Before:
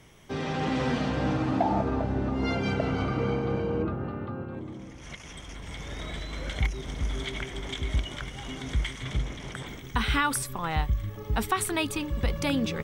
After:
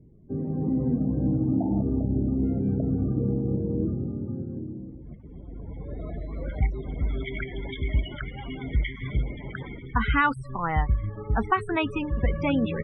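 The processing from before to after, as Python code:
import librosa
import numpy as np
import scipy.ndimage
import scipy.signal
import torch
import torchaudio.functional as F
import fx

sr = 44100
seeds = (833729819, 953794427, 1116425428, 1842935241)

y = fx.spec_topn(x, sr, count=32)
y = fx.filter_sweep_lowpass(y, sr, from_hz=290.0, to_hz=2100.0, start_s=4.73, end_s=7.41, q=1.1)
y = y * 10.0 ** (3.0 / 20.0)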